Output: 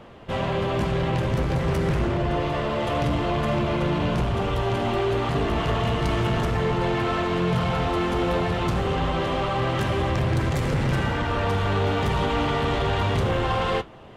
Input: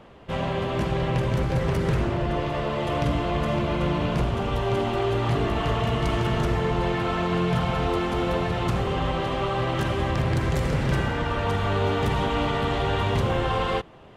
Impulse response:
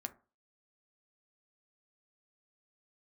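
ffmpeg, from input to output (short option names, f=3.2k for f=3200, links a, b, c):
-af "asoftclip=type=tanh:threshold=-20.5dB,flanger=delay=8.3:depth=4.6:regen=-65:speed=0.28:shape=triangular,volume=7.5dB"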